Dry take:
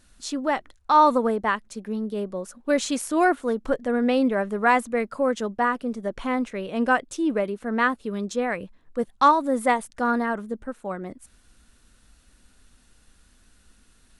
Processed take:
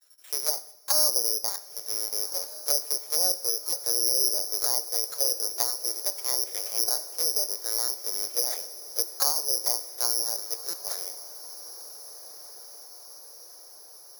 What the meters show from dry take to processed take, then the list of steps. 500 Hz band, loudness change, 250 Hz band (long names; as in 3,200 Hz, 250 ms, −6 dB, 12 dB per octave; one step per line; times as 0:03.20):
−14.0 dB, −1.0 dB, −28.0 dB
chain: sub-harmonics by changed cycles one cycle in 2, muted
linear-prediction vocoder at 8 kHz pitch kept
in parallel at −12 dB: asymmetric clip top −19 dBFS
on the sum: downward expander −57 dBFS
treble cut that deepens with the level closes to 550 Hz, closed at −20 dBFS
bad sample-rate conversion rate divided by 8×, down filtered, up zero stuff
dynamic equaliser 2,300 Hz, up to +8 dB, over −45 dBFS, Q 2.5
Butterworth high-pass 410 Hz 36 dB per octave
on a send: feedback delay with all-pass diffusion 1,489 ms, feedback 62%, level −15 dB
on the sum: coupled-rooms reverb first 0.65 s, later 2.7 s, from −18 dB, DRR 12 dB
buffer that repeats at 0:03.69/0:10.70, samples 256, times 5
level −9.5 dB